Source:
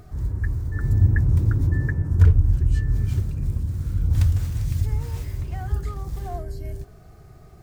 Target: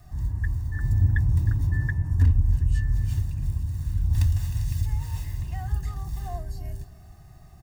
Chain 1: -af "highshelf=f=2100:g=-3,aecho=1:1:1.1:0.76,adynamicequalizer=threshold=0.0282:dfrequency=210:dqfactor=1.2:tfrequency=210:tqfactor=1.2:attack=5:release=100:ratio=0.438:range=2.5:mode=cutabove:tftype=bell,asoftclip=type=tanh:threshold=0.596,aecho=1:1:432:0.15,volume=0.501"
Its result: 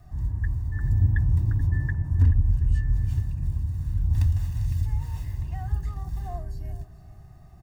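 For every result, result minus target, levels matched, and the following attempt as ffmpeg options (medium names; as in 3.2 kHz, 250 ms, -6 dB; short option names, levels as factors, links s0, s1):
echo 122 ms late; 4 kHz band -6.0 dB
-af "highshelf=f=2100:g=-3,aecho=1:1:1.1:0.76,adynamicequalizer=threshold=0.0282:dfrequency=210:dqfactor=1.2:tfrequency=210:tqfactor=1.2:attack=5:release=100:ratio=0.438:range=2.5:mode=cutabove:tftype=bell,asoftclip=type=tanh:threshold=0.596,aecho=1:1:310:0.15,volume=0.501"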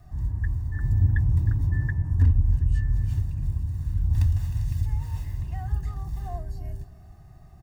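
4 kHz band -6.0 dB
-af "highshelf=f=2100:g=5,aecho=1:1:1.1:0.76,adynamicequalizer=threshold=0.0282:dfrequency=210:dqfactor=1.2:tfrequency=210:tqfactor=1.2:attack=5:release=100:ratio=0.438:range=2.5:mode=cutabove:tftype=bell,asoftclip=type=tanh:threshold=0.596,aecho=1:1:310:0.15,volume=0.501"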